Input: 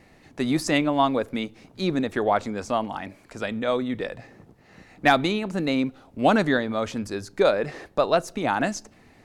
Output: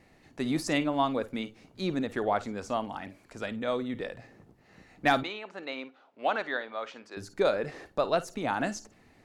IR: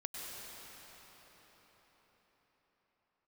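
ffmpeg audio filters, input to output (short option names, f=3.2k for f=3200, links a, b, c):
-filter_complex "[0:a]asettb=1/sr,asplit=3[a][b][c];[a]atrim=end=5.234[d];[b]atrim=start=5.23:end=7.17,asetpts=PTS-STARTPTS,afade=t=in:d=0.004:c=qsin,afade=t=out:st=1.936:d=0.004:c=qsin,highpass=610,lowpass=3.6k[e];[c]atrim=start=7.166[f];[d][e]acrossfade=d=0.004:c1=hsin:c2=qsin[g];[g][f]acrossfade=d=0.004:c1=qsin:c2=hsin[h];[1:a]atrim=start_sample=2205,atrim=end_sample=4410,asetrate=79380,aresample=44100[i];[h][i]afir=irnorm=-1:irlink=0,volume=3.5dB"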